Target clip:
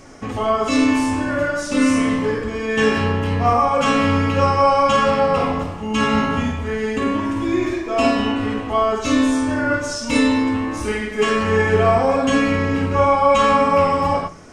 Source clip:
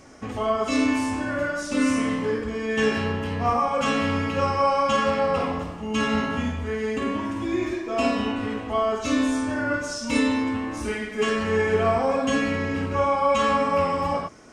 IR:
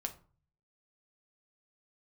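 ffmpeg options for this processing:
-filter_complex "[0:a]asplit=2[s0][s1];[1:a]atrim=start_sample=2205,lowshelf=f=75:g=7.5[s2];[s1][s2]afir=irnorm=-1:irlink=0,volume=1[s3];[s0][s3]amix=inputs=2:normalize=0"

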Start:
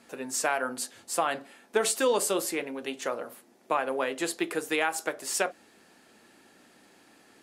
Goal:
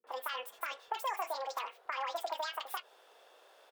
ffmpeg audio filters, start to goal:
-filter_complex "[0:a]highpass=140,acompressor=threshold=0.0282:ratio=6,asetrate=88200,aresample=44100,bass=f=250:g=-13,treble=f=4000:g=-11,acrossover=split=210|1900[s0][s1][s2];[s1]adelay=40[s3];[s2]adelay=70[s4];[s0][s3][s4]amix=inputs=3:normalize=0"

